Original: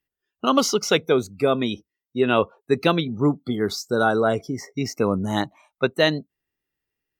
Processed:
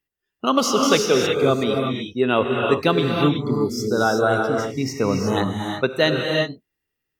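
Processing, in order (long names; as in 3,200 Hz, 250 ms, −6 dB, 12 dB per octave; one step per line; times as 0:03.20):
healed spectral selection 0:03.52–0:03.79, 640–4,800 Hz after
reverb whose tail is shaped and stops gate 390 ms rising, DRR 0.5 dB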